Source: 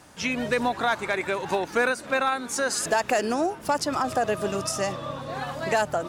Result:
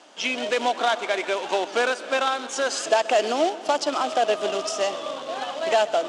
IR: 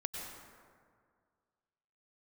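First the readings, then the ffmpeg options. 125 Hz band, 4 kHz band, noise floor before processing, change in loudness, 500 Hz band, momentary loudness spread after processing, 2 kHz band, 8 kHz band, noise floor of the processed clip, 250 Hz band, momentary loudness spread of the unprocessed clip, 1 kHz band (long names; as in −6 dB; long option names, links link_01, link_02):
below −15 dB, +6.0 dB, −43 dBFS, +2.0 dB, +3.5 dB, 6 LU, 0.0 dB, −1.0 dB, −37 dBFS, −3.0 dB, 5 LU, +2.0 dB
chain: -filter_complex "[0:a]acrusher=bits=2:mode=log:mix=0:aa=0.000001,highpass=frequency=270:width=0.5412,highpass=frequency=270:width=1.3066,equalizer=frequency=650:width_type=q:width=4:gain=6,equalizer=frequency=1800:width_type=q:width=4:gain=-3,equalizer=frequency=3100:width_type=q:width=4:gain=9,lowpass=frequency=7400:width=0.5412,lowpass=frequency=7400:width=1.3066,asplit=2[link_01][link_02];[1:a]atrim=start_sample=2205,adelay=130[link_03];[link_02][link_03]afir=irnorm=-1:irlink=0,volume=-16dB[link_04];[link_01][link_04]amix=inputs=2:normalize=0"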